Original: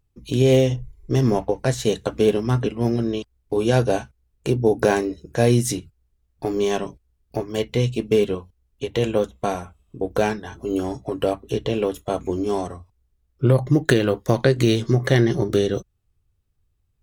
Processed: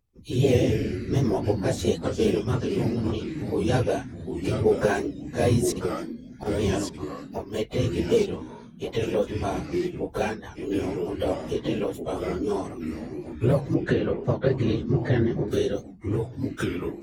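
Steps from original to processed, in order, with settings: phase randomisation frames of 50 ms; 5.72–6.46 s: compressor with a negative ratio -29 dBFS, ratio -0.5; ever faster or slower copies 87 ms, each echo -3 st, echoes 3, each echo -6 dB; 13.74–15.48 s: tape spacing loss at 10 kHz 23 dB; warped record 78 rpm, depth 100 cents; trim -5 dB

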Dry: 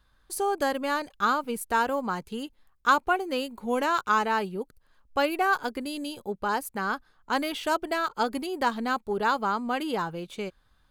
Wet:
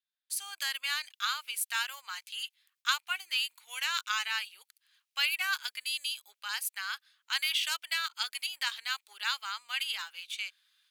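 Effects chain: level rider gain up to 5 dB; gate with hold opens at -53 dBFS; ladder high-pass 2 kHz, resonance 30%; trim +6 dB

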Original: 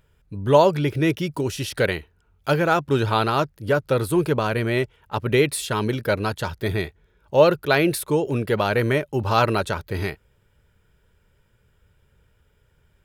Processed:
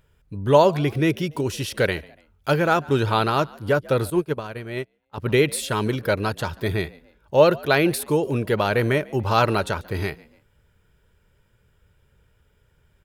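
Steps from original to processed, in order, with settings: on a send: frequency-shifting echo 144 ms, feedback 38%, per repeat +74 Hz, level -23.5 dB; 4.10–5.18 s: on the sum: upward expansion 2.5:1, over -32 dBFS

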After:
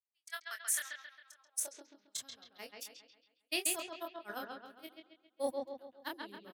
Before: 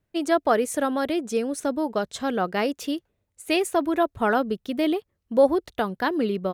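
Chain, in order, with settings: pre-emphasis filter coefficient 0.97; gate -34 dBFS, range -54 dB; doubling 25 ms -8 dB; reverse; upward compressor, threshold -29 dBFS; reverse; bass shelf 470 Hz +10.5 dB; on a send: bucket-brigade echo 135 ms, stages 4096, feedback 46%, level -4 dB; on the sum: high-pass sweep 1.9 kHz -> 97 Hz, 1.23–2.27 s; trim -1.5 dB

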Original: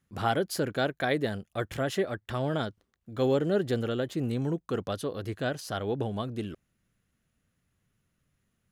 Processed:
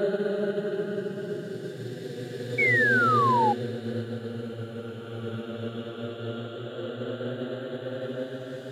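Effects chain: Paulstretch 17×, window 0.25 s, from 3.55 s; painted sound fall, 2.58–3.53 s, 800–2300 Hz -22 dBFS; upward expansion 1.5:1, over -32 dBFS

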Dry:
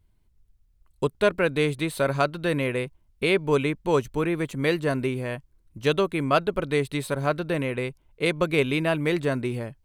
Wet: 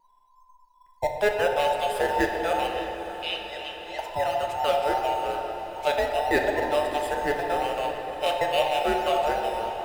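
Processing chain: every band turned upside down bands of 1 kHz; vibrato 1.1 Hz 14 cents; in parallel at -9.5 dB: decimation with a swept rate 8×, swing 60% 1.5 Hz; 2.67–3.99 s: on the sum: band-pass filter 3.2 kHz, Q 2; echo that smears into a reverb 630 ms, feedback 60%, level -13 dB; on a send at -2 dB: reverberation RT60 2.8 s, pre-delay 5 ms; on the sum: trim -5 dB

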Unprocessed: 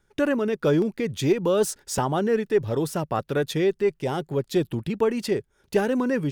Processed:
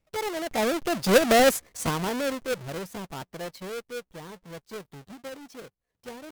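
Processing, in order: square wave that keeps the level; Doppler pass-by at 1.29 s, 40 m/s, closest 12 m; pitch shift +5 st

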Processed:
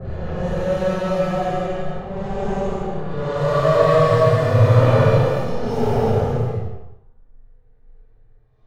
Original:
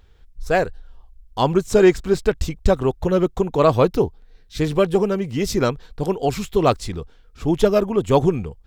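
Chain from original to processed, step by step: comb filter that takes the minimum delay 1.7 ms; Paulstretch 5.8×, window 0.25 s, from 2.98 s; peaking EQ 110 Hz +13 dB 0.71 oct; level-controlled noise filter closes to 870 Hz, open at -14.5 dBFS; Schroeder reverb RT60 0.64 s, combs from 26 ms, DRR -6 dB; trim -8 dB

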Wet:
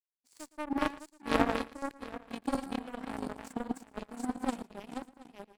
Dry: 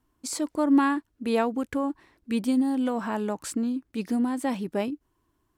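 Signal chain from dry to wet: backward echo that repeats 364 ms, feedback 59%, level -0.5 dB; power-law waveshaper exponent 3; delay 114 ms -20 dB; in parallel at -4 dB: one-sided clip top -31.5 dBFS; on the sum: trim -1.5 dB

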